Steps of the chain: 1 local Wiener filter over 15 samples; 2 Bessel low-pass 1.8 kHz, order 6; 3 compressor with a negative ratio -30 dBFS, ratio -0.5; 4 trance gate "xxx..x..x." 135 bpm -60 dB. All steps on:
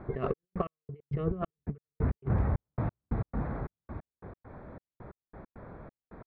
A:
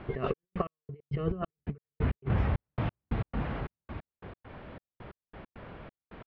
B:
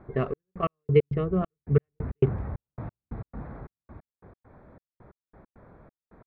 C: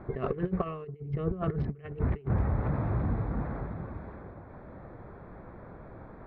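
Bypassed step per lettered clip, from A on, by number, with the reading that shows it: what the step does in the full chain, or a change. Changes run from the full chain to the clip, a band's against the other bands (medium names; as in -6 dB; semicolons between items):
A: 1, 2 kHz band +5.5 dB; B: 3, crest factor change +3.0 dB; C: 4, crest factor change -2.0 dB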